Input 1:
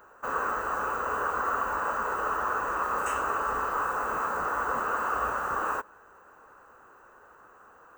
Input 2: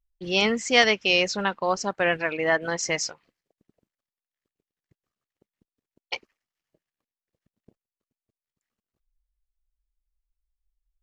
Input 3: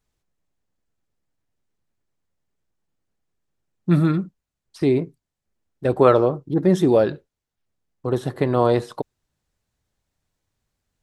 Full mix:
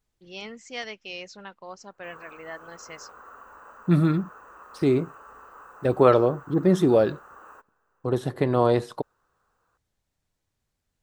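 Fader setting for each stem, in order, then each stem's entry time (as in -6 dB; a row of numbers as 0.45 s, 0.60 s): -18.5 dB, -16.5 dB, -2.5 dB; 1.80 s, 0.00 s, 0.00 s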